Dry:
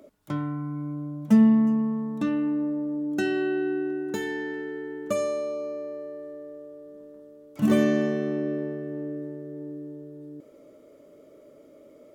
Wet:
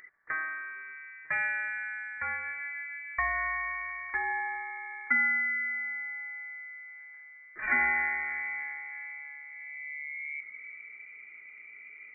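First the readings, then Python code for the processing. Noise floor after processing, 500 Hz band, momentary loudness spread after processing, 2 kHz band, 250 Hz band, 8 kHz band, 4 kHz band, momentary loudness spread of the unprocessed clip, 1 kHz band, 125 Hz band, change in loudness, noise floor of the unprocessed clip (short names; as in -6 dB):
-51 dBFS, -24.0 dB, 19 LU, +11.0 dB, -30.5 dB, under -30 dB, under -20 dB, 20 LU, +4.0 dB, under -20 dB, -5.0 dB, -53 dBFS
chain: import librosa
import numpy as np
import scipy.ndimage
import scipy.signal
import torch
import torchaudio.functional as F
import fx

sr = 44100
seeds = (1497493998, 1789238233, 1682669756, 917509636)

y = fx.filter_sweep_highpass(x, sr, from_hz=810.0, to_hz=190.0, start_s=9.49, end_s=11.31, q=3.8)
y = fx.hum_notches(y, sr, base_hz=50, count=3)
y = fx.freq_invert(y, sr, carrier_hz=2600)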